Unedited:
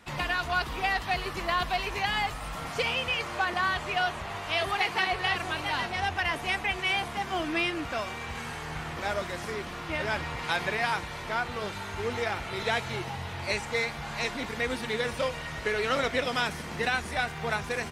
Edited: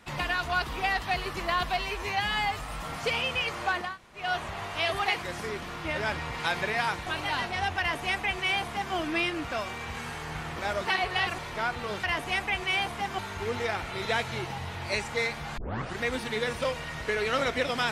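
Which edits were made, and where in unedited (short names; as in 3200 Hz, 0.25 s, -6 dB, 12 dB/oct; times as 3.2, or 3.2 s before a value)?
1.77–2.32 stretch 1.5×
3.59–3.96 room tone, crossfade 0.24 s
4.94–5.47 swap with 9.26–11.11
6.2–7.35 copy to 11.76
14.15 tape start 0.43 s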